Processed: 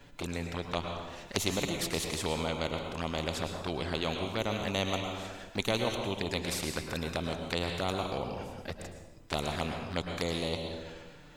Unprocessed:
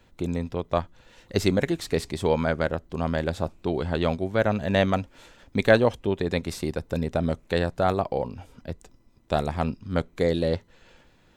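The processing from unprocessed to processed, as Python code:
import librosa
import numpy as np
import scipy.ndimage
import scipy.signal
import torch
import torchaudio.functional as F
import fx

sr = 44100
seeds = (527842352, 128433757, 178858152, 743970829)

y = fx.env_flanger(x, sr, rest_ms=7.4, full_db=-22.0)
y = fx.rev_plate(y, sr, seeds[0], rt60_s=0.81, hf_ratio=0.9, predelay_ms=95, drr_db=6.5)
y = fx.spectral_comp(y, sr, ratio=2.0)
y = F.gain(torch.from_numpy(y), -5.5).numpy()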